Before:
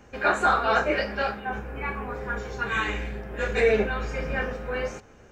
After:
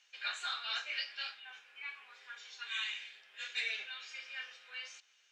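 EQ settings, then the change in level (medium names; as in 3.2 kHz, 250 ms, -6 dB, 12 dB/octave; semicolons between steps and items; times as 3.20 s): ladder band-pass 4 kHz, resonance 45%; +7.5 dB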